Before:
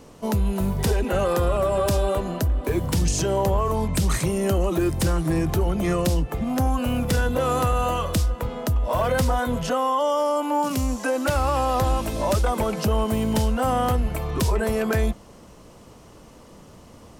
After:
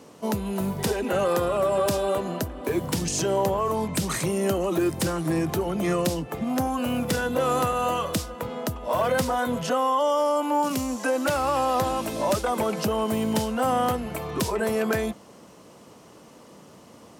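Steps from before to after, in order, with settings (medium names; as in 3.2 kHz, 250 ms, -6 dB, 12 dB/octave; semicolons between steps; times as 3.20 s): high-pass 160 Hz 12 dB/octave; MP3 160 kbps 48 kHz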